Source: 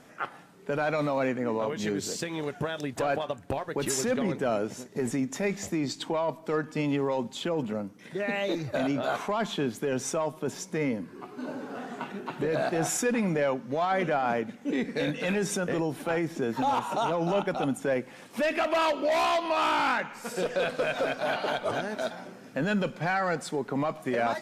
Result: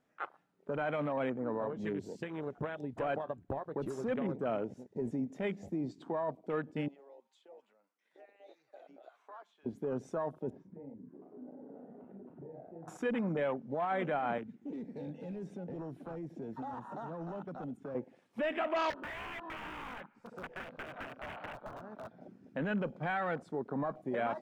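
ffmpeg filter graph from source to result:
-filter_complex "[0:a]asettb=1/sr,asplit=3[a][b][c];[a]atrim=end=6.884[d];[b]atrim=start=6.88:end=9.66,asetpts=PTS-STARTPTS,afade=t=in:d=0.004:c=qsin,afade=t=out:st=2.776:d=0.004:c=qsin,highpass=790,acompressor=threshold=-41dB:ratio=2.5:attack=3.2:release=140:knee=1:detection=peak,acrossover=split=550[e][f];[e]aeval=exprs='val(0)*(1-0.5/2+0.5/2*cos(2*PI*3.4*n/s))':c=same[g];[f]aeval=exprs='val(0)*(1-0.5/2-0.5/2*cos(2*PI*3.4*n/s))':c=same[h];[g][h]amix=inputs=2:normalize=0[i];[c]atrim=start=9.656[j];[d][i]acrossfade=d=0.004:c1=hsin:c2=qsin[k];[k][j]acrossfade=d=0.004:c1=qsin:c2=hsin,asettb=1/sr,asplit=3[l][m][n];[l]atrim=end=10.504[o];[m]atrim=start=10.5:end=12.88,asetpts=PTS-STARTPTS,afade=t=in:d=0.004:c=qsin,afade=t=out:st=2.376:d=0.004:c=qsin,lowpass=1.3k,acompressor=threshold=-41dB:ratio=6:attack=3.2:release=140:knee=1:detection=peak,asplit=2[p][q];[q]adelay=36,volume=-4dB[r];[p][r]amix=inputs=2:normalize=0,atrim=end_sample=104958[s];[n]atrim=start=12.876[t];[o][s]acrossfade=d=0.004:c1=hsin:c2=qsin[u];[u][t]acrossfade=d=0.004:c1=qsin:c2=hsin,asettb=1/sr,asplit=3[v][w][x];[v]atrim=end=14.384[y];[w]atrim=start=14.38:end=17.95,asetpts=PTS-STARTPTS,afade=t=in:d=0.004:c=qsin,afade=t=out:st=3.566:d=0.004:c=qsin,acrossover=split=300|890|3800[z][aa][ab][ac];[z]acompressor=threshold=-35dB:ratio=3[ad];[aa]acompressor=threshold=-43dB:ratio=3[ae];[ab]acompressor=threshold=-42dB:ratio=3[af];[ac]acompressor=threshold=-49dB:ratio=3[ag];[ad][ae][af][ag]amix=inputs=4:normalize=0,asoftclip=type=hard:threshold=-30dB[ah];[x]atrim=start=17.946[ai];[y][ah]acrossfade=d=0.004:c1=hsin:c2=qsin[aj];[aj][ai]acrossfade=d=0.004:c1=qsin:c2=hsin,asettb=1/sr,asplit=3[ak][al][am];[ak]atrim=end=18.904[an];[al]atrim=start=18.9:end=22.21,asetpts=PTS-STARTPTS,afade=t=in:d=0.004:c=qsin,afade=t=out:st=3.306:d=0.004:c=qsin,lowpass=f=2.6k:p=1,aeval=exprs='(mod(14.1*val(0)+1,2)-1)/14.1':c=same,acrossover=split=230|820|1900[ao][ap][aq][ar];[ao]acompressor=threshold=-46dB:ratio=3[as];[ap]acompressor=threshold=-48dB:ratio=3[at];[aq]acompressor=threshold=-38dB:ratio=3[au];[ar]acompressor=threshold=-38dB:ratio=3[av];[as][at][au][av]amix=inputs=4:normalize=0[aw];[am]atrim=start=22.206[ax];[an][aw]acrossfade=d=0.004:c1=hsin:c2=qsin[ay];[ay][ax]acrossfade=d=0.004:c1=qsin:c2=hsin,highshelf=f=5.2k:g=-8,afwtdn=0.0141,volume=-6.5dB"

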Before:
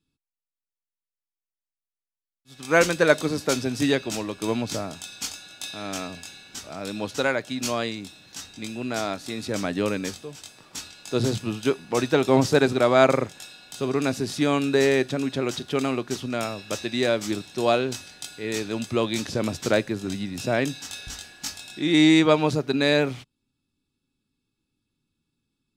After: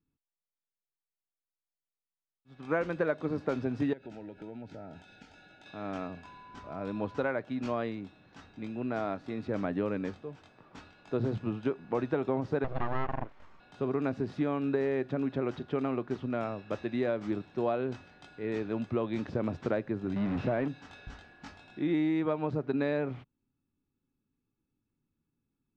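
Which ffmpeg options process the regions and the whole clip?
-filter_complex "[0:a]asettb=1/sr,asplit=3[a][b][c];[a]atrim=end=3.934[d];[b]atrim=start=3.93:end=5.66,asetpts=PTS-STARTPTS,afade=t=in:d=0.004:c=qsin,afade=t=out:st=1.726:d=0.004:c=qsin,acompressor=threshold=-36dB:ratio=6:attack=3.2:release=140:knee=1:detection=peak,asuperstop=centerf=1100:order=20:qfactor=3.7[e];[c]atrim=start=5.656[f];[d][e]acrossfade=d=0.004:c1=hsin:c2=qsin[g];[g][f]acrossfade=d=0.004:c1=qsin:c2=hsin,asettb=1/sr,asplit=3[h][i][j];[h]atrim=end=6.244[k];[i]atrim=start=6.24:end=7.24,asetpts=PTS-STARTPTS,afade=t=in:d=0.004:c=qsin,afade=t=out:st=0.996:d=0.004:c=qsin,lowshelf=f=77:g=6.5,aeval=exprs='val(0)+0.00562*sin(2*PI*1000*n/s)':c=same[l];[j]atrim=start=7.236[m];[k][l]acrossfade=d=0.004:c1=hsin:c2=qsin[n];[n][m]acrossfade=d=0.004:c1=qsin:c2=hsin,asettb=1/sr,asplit=3[o][p][q];[o]atrim=end=12.644[r];[p]atrim=start=12.64:end=13.6,asetpts=PTS-STARTPTS,afade=t=in:d=0.004:c=qsin,afade=t=out:st=0.956:d=0.004:c=qsin,lowpass=4k,aeval=exprs='abs(val(0))':c=same[s];[q]atrim=start=13.596[t];[r][s]acrossfade=d=0.004:c1=hsin:c2=qsin[u];[u][t]acrossfade=d=0.004:c1=qsin:c2=hsin,asettb=1/sr,asplit=3[v][w][x];[v]atrim=end=20.164[y];[w]atrim=start=20.16:end=20.68,asetpts=PTS-STARTPTS,afade=t=in:d=0.004:c=qsin,afade=t=out:st=0.516:d=0.004:c=qsin,aeval=exprs='val(0)+0.5*0.0562*sgn(val(0))':c=same,acrossover=split=4800[z][aa];[aa]acompressor=threshold=-44dB:ratio=4:attack=1:release=60[ab];[z][ab]amix=inputs=2:normalize=0[ac];[x]atrim=start=20.676[ad];[y][ac]acrossfade=d=0.004:c1=hsin:c2=qsin[ae];[ae][ad]acrossfade=d=0.004:c1=qsin:c2=hsin,lowpass=1.5k,acompressor=threshold=-22dB:ratio=10,volume=-3.5dB"

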